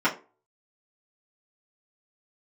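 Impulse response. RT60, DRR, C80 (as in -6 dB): 0.35 s, -9.5 dB, 20.0 dB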